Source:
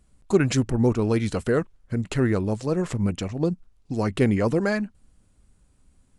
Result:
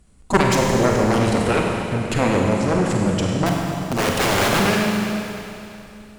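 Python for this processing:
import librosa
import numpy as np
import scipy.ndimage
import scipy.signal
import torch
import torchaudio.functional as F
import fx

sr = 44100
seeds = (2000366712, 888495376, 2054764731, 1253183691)

y = fx.overflow_wrap(x, sr, gain_db=20.0, at=(3.46, 4.63))
y = fx.cheby_harmonics(y, sr, harmonics=(7,), levels_db=(-7,), full_scale_db=-5.5)
y = fx.rev_schroeder(y, sr, rt60_s=2.9, comb_ms=33, drr_db=-1.0)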